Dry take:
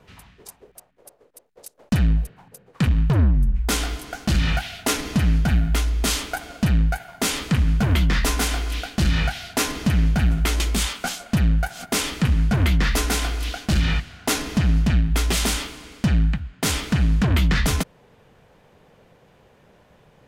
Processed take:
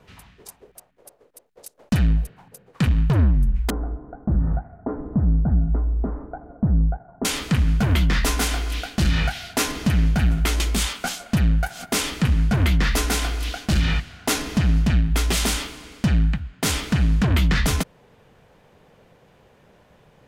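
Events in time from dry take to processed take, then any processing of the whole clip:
3.70–7.25 s: Gaussian low-pass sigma 9.5 samples

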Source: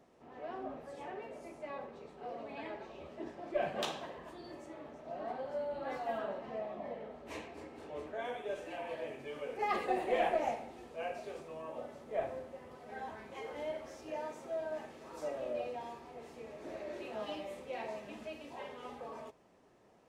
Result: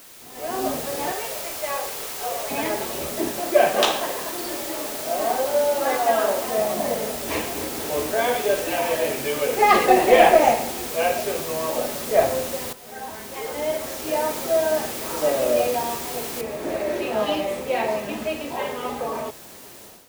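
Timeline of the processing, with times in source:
1.12–2.51 s: Bessel high-pass 630 Hz, order 6
3.39–6.58 s: high-pass 290 Hz
7.81–11.23 s: treble shelf 4.9 kHz +6 dB
12.73–14.42 s: fade in, from -14 dB
16.41 s: noise floor step -51 dB -62 dB
whole clip: level rider gain up to 13.5 dB; trim +4.5 dB

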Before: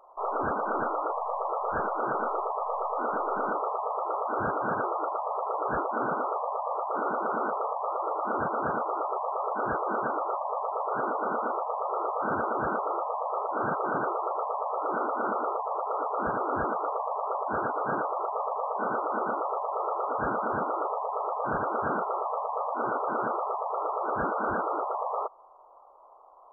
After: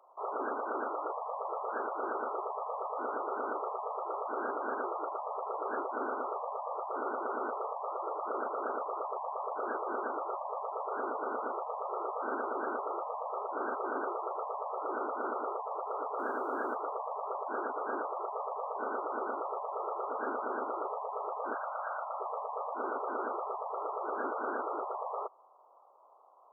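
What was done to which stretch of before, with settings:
8.18–9.67 s: resonances exaggerated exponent 1.5
16.19–16.75 s: spectrum-flattening compressor 2:1
21.54–22.20 s: elliptic band-stop 120–600 Hz
whole clip: Chebyshev high-pass 250 Hz, order 5; dynamic bell 390 Hz, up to +4 dB, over -48 dBFS, Q 4.7; trim -6 dB

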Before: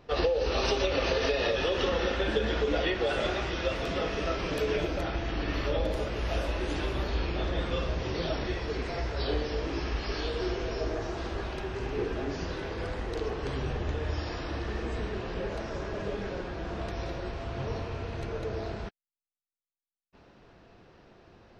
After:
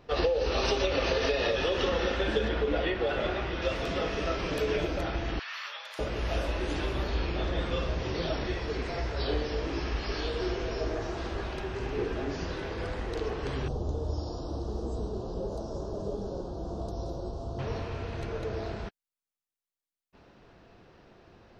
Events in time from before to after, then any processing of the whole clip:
2.48–3.62 s: distance through air 160 m
5.39–5.99 s: high-pass 1.1 kHz 24 dB/octave
13.68–17.59 s: Butterworth band-stop 2.1 kHz, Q 0.53

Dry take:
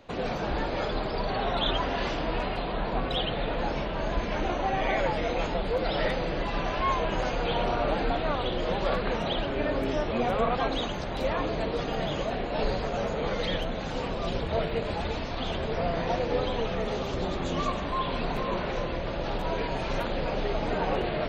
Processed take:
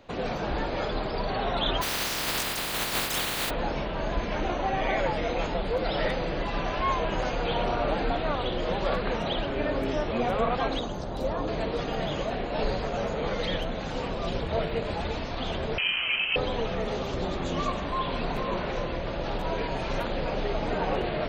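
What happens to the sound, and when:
1.81–3.49 s: spectral contrast reduction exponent 0.15
10.79–11.48 s: peaking EQ 2.3 kHz -11.5 dB 1.3 oct
15.78–16.36 s: frequency inversion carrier 3.1 kHz

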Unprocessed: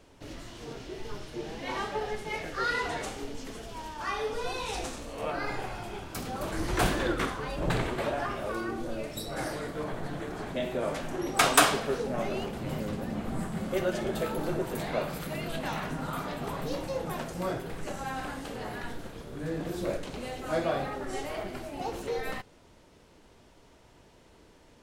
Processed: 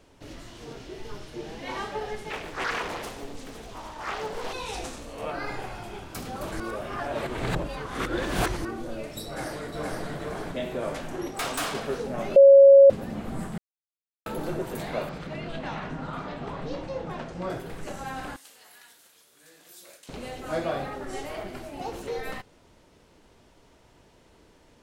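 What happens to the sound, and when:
2.30–4.53 s: loudspeaker Doppler distortion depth 0.88 ms
6.60–8.65 s: reverse
9.25–10.04 s: echo throw 470 ms, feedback 35%, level -2 dB
11.28–11.75 s: valve stage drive 26 dB, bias 0.65
12.36–12.90 s: bleep 552 Hz -8.5 dBFS
13.58–14.26 s: mute
15.09–17.50 s: distance through air 120 m
18.36–20.09 s: differentiator

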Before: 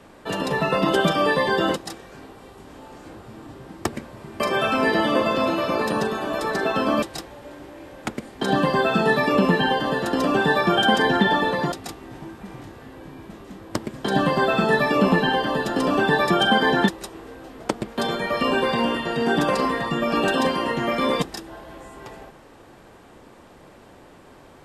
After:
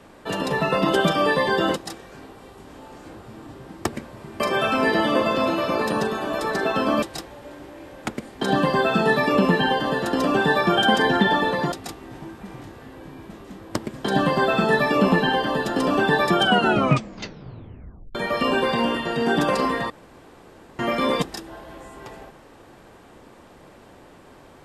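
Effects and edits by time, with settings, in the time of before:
16.42 s: tape stop 1.73 s
19.90–20.79 s: room tone

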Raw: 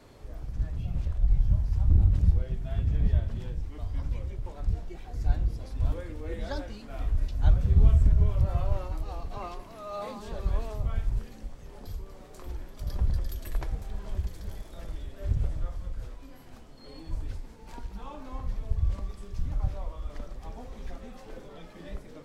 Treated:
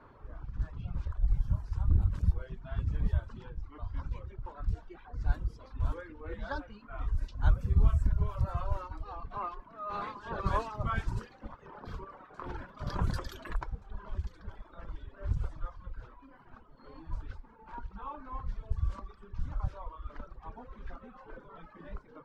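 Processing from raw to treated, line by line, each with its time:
9.89–13.53 s: spectral peaks clipped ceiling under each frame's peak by 15 dB
whole clip: level-controlled noise filter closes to 2 kHz, open at -18.5 dBFS; high-order bell 1.2 kHz +9.5 dB 1 oct; reverb removal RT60 1.3 s; trim -3.5 dB

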